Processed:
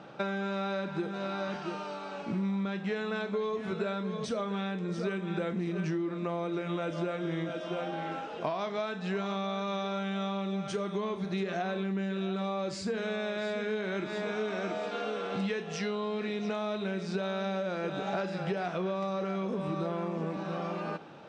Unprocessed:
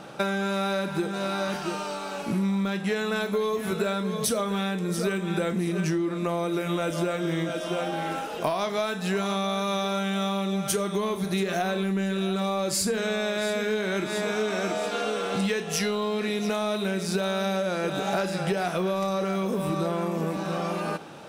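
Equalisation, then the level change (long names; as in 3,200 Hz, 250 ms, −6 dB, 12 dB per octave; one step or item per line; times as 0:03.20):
high-pass filter 75 Hz
linear-phase brick-wall low-pass 9,700 Hz
high-frequency loss of the air 150 metres
−5.5 dB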